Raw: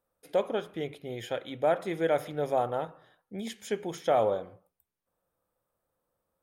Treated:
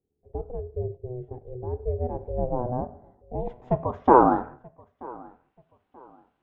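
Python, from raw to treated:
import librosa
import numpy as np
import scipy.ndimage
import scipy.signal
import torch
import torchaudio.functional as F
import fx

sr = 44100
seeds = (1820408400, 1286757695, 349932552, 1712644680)

y = fx.filter_sweep_lowpass(x, sr, from_hz=170.0, to_hz=2800.0, start_s=1.73, end_s=5.66, q=3.9)
y = fx.echo_feedback(y, sr, ms=932, feedback_pct=30, wet_db=-23.5)
y = y * np.sin(2.0 * np.pi * 250.0 * np.arange(len(y)) / sr)
y = F.gain(torch.from_numpy(y), 7.0).numpy()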